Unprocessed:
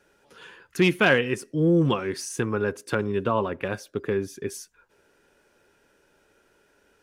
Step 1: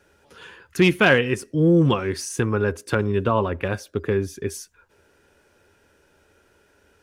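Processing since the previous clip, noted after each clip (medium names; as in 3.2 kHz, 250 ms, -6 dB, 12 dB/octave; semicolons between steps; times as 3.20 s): peaking EQ 80 Hz +13 dB 0.62 oct; trim +3 dB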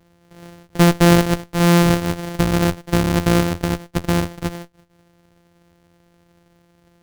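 sorted samples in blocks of 256 samples; sliding maximum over 33 samples; trim +3 dB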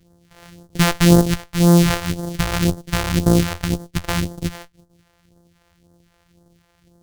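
phase shifter stages 2, 1.9 Hz, lowest notch 210–2400 Hz; trim +1.5 dB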